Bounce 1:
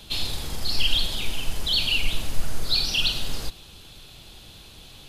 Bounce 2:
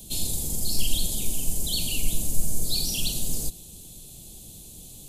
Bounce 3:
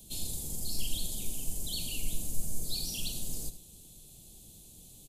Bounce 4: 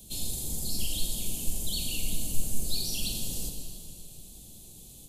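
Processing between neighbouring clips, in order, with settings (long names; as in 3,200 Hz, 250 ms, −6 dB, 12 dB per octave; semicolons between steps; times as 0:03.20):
drawn EQ curve 110 Hz 0 dB, 180 Hz +5 dB, 700 Hz −5 dB, 1,400 Hz −21 dB, 5,100 Hz −3 dB, 7,300 Hz +12 dB
single-tap delay 75 ms −13.5 dB; level −9 dB
dense smooth reverb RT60 2.9 s, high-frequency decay 0.85×, DRR 3.5 dB; level +2.5 dB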